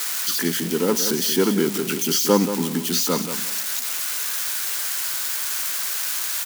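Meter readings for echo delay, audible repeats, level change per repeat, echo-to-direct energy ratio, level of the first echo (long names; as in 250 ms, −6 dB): 179 ms, 2, −13.5 dB, −10.0 dB, −10.0 dB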